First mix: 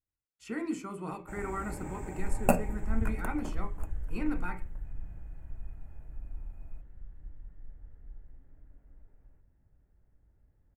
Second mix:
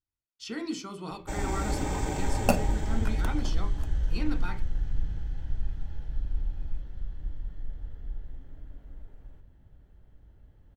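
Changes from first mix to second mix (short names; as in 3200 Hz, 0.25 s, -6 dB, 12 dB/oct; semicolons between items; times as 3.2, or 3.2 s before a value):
first sound +11.0 dB; master: add band shelf 4300 Hz +15.5 dB 1.2 oct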